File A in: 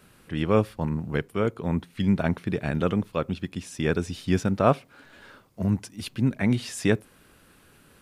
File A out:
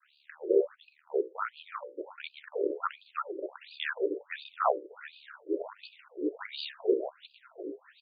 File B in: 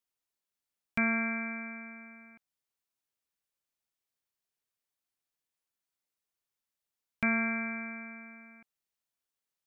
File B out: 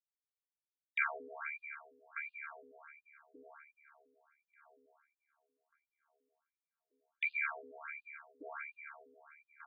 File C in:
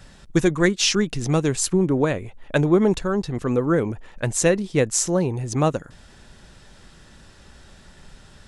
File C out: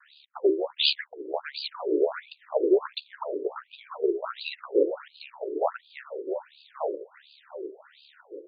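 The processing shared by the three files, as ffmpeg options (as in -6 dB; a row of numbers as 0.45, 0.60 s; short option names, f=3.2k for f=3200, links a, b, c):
-filter_complex "[0:a]agate=range=-33dB:threshold=-52dB:ratio=3:detection=peak,bass=f=250:g=13,treble=f=4k:g=11,bandreject=f=60:t=h:w=6,bandreject=f=120:t=h:w=6,bandreject=f=180:t=h:w=6,bandreject=f=240:t=h:w=6,bandreject=f=300:t=h:w=6,bandreject=f=360:t=h:w=6,bandreject=f=420:t=h:w=6,bandreject=f=480:t=h:w=6,bandreject=f=540:t=h:w=6,acrossover=split=290|3000[a][b][c];[a]acompressor=threshold=-20dB:ratio=6[d];[d][b][c]amix=inputs=3:normalize=0,asoftclip=type=tanh:threshold=-8dB,aeval=exprs='val(0)*sin(2*PI*36*n/s)':c=same,highpass=120,equalizer=f=170:t=q:w=4:g=9,equalizer=f=250:t=q:w=4:g=-8,equalizer=f=390:t=q:w=4:g=7,equalizer=f=990:t=q:w=4:g=5,equalizer=f=1.4k:t=q:w=4:g=7,equalizer=f=3.7k:t=q:w=4:g=4,lowpass=f=7.2k:w=0.5412,lowpass=f=7.2k:w=1.3066,asplit=2[e][f];[f]adelay=1187,lowpass=f=1.1k:p=1,volume=-3.5dB,asplit=2[g][h];[h]adelay=1187,lowpass=f=1.1k:p=1,volume=0.45,asplit=2[i][j];[j]adelay=1187,lowpass=f=1.1k:p=1,volume=0.45,asplit=2[k][l];[l]adelay=1187,lowpass=f=1.1k:p=1,volume=0.45,asplit=2[m][n];[n]adelay=1187,lowpass=f=1.1k:p=1,volume=0.45,asplit=2[o][p];[p]adelay=1187,lowpass=f=1.1k:p=1,volume=0.45[q];[g][i][k][m][o][q]amix=inputs=6:normalize=0[r];[e][r]amix=inputs=2:normalize=0,afftfilt=real='re*between(b*sr/1024,400*pow(3500/400,0.5+0.5*sin(2*PI*1.4*pts/sr))/1.41,400*pow(3500/400,0.5+0.5*sin(2*PI*1.4*pts/sr))*1.41)':imag='im*between(b*sr/1024,400*pow(3500/400,0.5+0.5*sin(2*PI*1.4*pts/sr))/1.41,400*pow(3500/400,0.5+0.5*sin(2*PI*1.4*pts/sr))*1.41)':win_size=1024:overlap=0.75"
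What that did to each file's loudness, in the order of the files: -7.5, -9.0, -7.5 LU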